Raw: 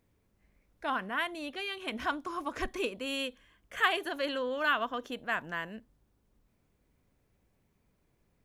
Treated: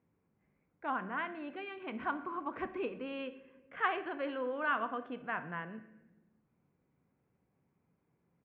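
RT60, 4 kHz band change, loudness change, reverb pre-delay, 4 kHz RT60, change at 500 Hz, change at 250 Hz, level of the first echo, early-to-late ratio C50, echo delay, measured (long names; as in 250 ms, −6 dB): 1.1 s, −15.0 dB, −4.5 dB, 6 ms, 0.70 s, −3.5 dB, −2.0 dB, −19.5 dB, 13.0 dB, 64 ms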